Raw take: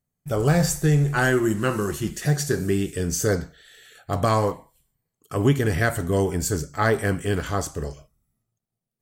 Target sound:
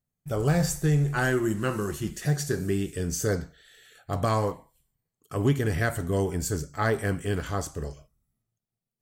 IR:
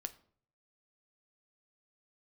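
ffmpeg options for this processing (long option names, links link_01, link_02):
-af "lowshelf=frequency=150:gain=2.5,asoftclip=type=hard:threshold=-10dB,volume=-5dB"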